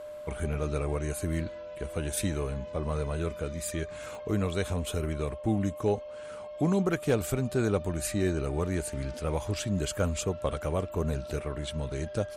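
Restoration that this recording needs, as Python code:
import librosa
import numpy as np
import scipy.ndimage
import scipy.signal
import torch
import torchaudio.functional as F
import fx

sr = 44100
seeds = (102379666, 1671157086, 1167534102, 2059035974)

y = fx.fix_declip(x, sr, threshold_db=-17.0)
y = fx.fix_declick_ar(y, sr, threshold=10.0)
y = fx.notch(y, sr, hz=600.0, q=30.0)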